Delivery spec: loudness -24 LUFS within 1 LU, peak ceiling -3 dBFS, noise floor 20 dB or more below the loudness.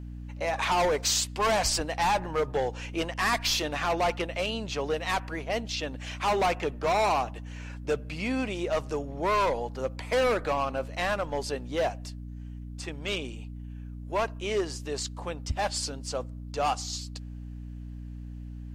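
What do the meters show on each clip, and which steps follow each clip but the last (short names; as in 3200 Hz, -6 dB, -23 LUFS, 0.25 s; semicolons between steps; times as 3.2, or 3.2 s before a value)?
hum 60 Hz; harmonics up to 300 Hz; hum level -37 dBFS; loudness -29.0 LUFS; peak -14.5 dBFS; loudness target -24.0 LUFS
-> de-hum 60 Hz, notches 5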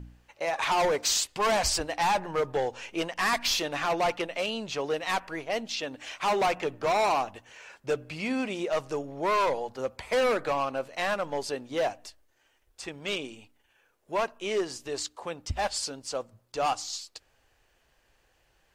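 hum none; loudness -29.0 LUFS; peak -14.5 dBFS; loudness target -24.0 LUFS
-> gain +5 dB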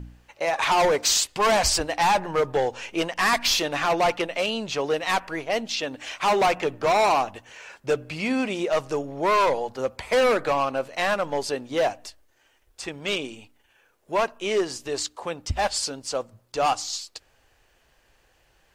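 loudness -24.0 LUFS; peak -9.5 dBFS; noise floor -64 dBFS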